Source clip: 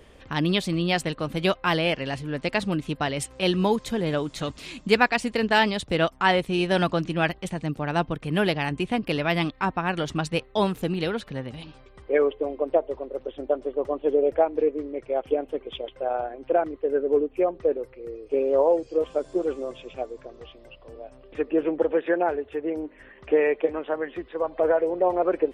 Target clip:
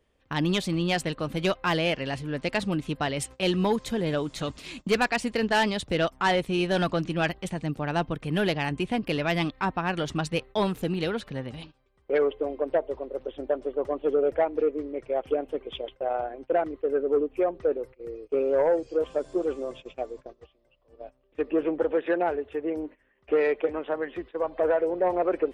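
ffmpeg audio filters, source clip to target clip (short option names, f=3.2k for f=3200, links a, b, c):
-af "agate=range=-18dB:threshold=-40dB:ratio=16:detection=peak,aeval=exprs='0.596*(cos(1*acos(clip(val(0)/0.596,-1,1)))-cos(1*PI/2))+0.119*(cos(5*acos(clip(val(0)/0.596,-1,1)))-cos(5*PI/2))':c=same,volume=-7dB"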